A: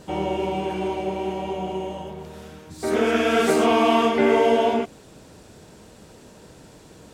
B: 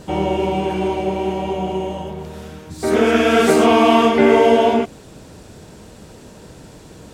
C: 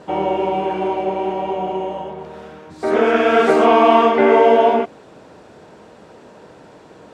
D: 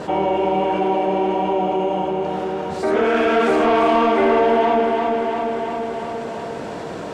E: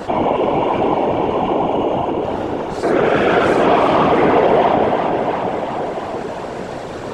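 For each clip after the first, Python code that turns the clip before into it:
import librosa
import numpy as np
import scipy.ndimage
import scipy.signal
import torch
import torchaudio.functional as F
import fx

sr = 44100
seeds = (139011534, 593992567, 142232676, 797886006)

y1 = fx.low_shelf(x, sr, hz=180.0, db=4.5)
y1 = F.gain(torch.from_numpy(y1), 5.0).numpy()
y2 = fx.bandpass_q(y1, sr, hz=870.0, q=0.64)
y2 = F.gain(torch.from_numpy(y2), 3.0).numpy()
y3 = 10.0 ** (-7.5 / 20.0) * np.tanh(y2 / 10.0 ** (-7.5 / 20.0))
y3 = fx.echo_feedback(y3, sr, ms=344, feedback_pct=56, wet_db=-7)
y3 = fx.env_flatten(y3, sr, amount_pct=50)
y3 = F.gain(torch.from_numpy(y3), -3.5).numpy()
y4 = fx.whisperise(y3, sr, seeds[0])
y4 = F.gain(torch.from_numpy(y4), 2.5).numpy()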